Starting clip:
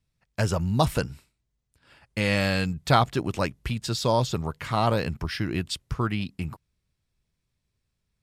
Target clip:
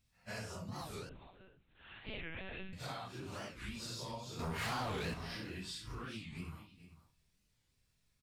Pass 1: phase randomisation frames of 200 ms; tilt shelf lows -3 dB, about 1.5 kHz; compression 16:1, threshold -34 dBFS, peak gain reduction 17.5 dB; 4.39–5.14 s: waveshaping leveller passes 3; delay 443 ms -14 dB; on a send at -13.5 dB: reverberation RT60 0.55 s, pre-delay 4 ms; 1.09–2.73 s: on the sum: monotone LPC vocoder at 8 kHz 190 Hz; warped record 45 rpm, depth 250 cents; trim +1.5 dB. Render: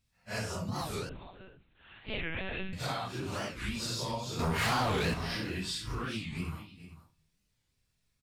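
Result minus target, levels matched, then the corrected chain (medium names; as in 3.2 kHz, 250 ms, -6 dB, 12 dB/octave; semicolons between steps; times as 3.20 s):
compression: peak gain reduction -9 dB
phase randomisation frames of 200 ms; tilt shelf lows -3 dB, about 1.5 kHz; compression 16:1, threshold -43.5 dBFS, peak gain reduction 26.5 dB; 4.39–5.14 s: waveshaping leveller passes 3; delay 443 ms -14 dB; on a send at -13.5 dB: reverberation RT60 0.55 s, pre-delay 4 ms; 1.09–2.73 s: on the sum: monotone LPC vocoder at 8 kHz 190 Hz; warped record 45 rpm, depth 250 cents; trim +1.5 dB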